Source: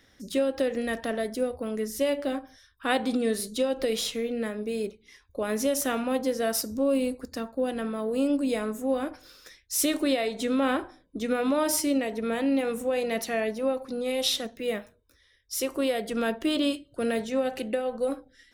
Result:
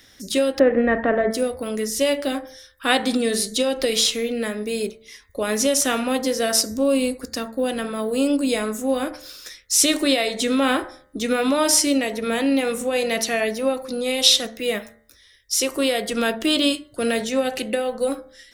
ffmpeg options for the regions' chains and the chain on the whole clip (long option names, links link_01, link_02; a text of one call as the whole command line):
ffmpeg -i in.wav -filter_complex "[0:a]asettb=1/sr,asplit=3[link_01][link_02][link_03];[link_01]atrim=end=0.594[link_04];[link_02]atrim=start=0.59:end=1.31,asetpts=PTS-STARTPTS,afade=type=in:duration=0.004:curve=qsin,afade=type=out:start_time=0.716:duration=0.004:curve=qsin,lowpass=frequency=1800:width=0.5412,lowpass=frequency=1800:width=1.3066,acontrast=52[link_05];[link_03]atrim=start=1.306[link_06];[link_04][link_05]acrossfade=duration=0.004:curve1=hsin:curve2=qsin[link_07];[link_07][link_06]acrossfade=duration=0.004:curve1=qsin:curve2=hsin,acrossover=split=9600[link_08][link_09];[link_09]acompressor=threshold=-54dB:ratio=4:attack=1:release=60[link_10];[link_08][link_10]amix=inputs=2:normalize=0,highshelf=frequency=2600:gain=10,bandreject=frequency=74.34:width_type=h:width=4,bandreject=frequency=148.68:width_type=h:width=4,bandreject=frequency=223.02:width_type=h:width=4,bandreject=frequency=297.36:width_type=h:width=4,bandreject=frequency=371.7:width_type=h:width=4,bandreject=frequency=446.04:width_type=h:width=4,bandreject=frequency=520.38:width_type=h:width=4,bandreject=frequency=594.72:width_type=h:width=4,bandreject=frequency=669.06:width_type=h:width=4,bandreject=frequency=743.4:width_type=h:width=4,bandreject=frequency=817.74:width_type=h:width=4,bandreject=frequency=892.08:width_type=h:width=4,bandreject=frequency=966.42:width_type=h:width=4,bandreject=frequency=1040.76:width_type=h:width=4,bandreject=frequency=1115.1:width_type=h:width=4,bandreject=frequency=1189.44:width_type=h:width=4,bandreject=frequency=1263.78:width_type=h:width=4,bandreject=frequency=1338.12:width_type=h:width=4,bandreject=frequency=1412.46:width_type=h:width=4,bandreject=frequency=1486.8:width_type=h:width=4,bandreject=frequency=1561.14:width_type=h:width=4,bandreject=frequency=1635.48:width_type=h:width=4,bandreject=frequency=1709.82:width_type=h:width=4,bandreject=frequency=1784.16:width_type=h:width=4,bandreject=frequency=1858.5:width_type=h:width=4,bandreject=frequency=1932.84:width_type=h:width=4,bandreject=frequency=2007.18:width_type=h:width=4,bandreject=frequency=2081.52:width_type=h:width=4,bandreject=frequency=2155.86:width_type=h:width=4,bandreject=frequency=2230.2:width_type=h:width=4,volume=5dB" out.wav